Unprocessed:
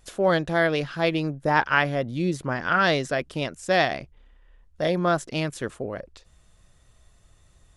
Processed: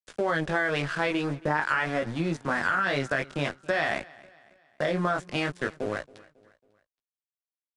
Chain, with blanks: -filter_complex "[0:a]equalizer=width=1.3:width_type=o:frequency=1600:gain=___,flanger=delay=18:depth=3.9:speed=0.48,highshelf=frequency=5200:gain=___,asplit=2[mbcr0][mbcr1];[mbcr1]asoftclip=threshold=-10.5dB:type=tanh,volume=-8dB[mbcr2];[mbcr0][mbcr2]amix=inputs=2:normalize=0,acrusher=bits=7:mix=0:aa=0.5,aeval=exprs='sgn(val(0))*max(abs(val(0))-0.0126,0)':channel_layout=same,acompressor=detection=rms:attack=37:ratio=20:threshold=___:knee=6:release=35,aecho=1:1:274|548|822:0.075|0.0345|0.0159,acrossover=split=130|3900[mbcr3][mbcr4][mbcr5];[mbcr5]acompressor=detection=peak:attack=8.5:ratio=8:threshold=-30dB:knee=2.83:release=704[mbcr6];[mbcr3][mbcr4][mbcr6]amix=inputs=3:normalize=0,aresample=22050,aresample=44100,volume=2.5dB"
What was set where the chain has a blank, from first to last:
8.5, -7, -29dB